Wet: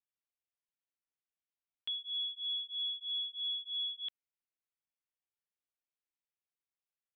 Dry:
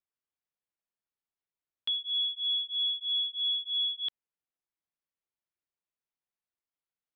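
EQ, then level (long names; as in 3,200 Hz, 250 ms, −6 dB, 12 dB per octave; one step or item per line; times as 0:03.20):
high-frequency loss of the air 200 metres
parametric band 2,700 Hz +7.5 dB 1.3 octaves
−8.5 dB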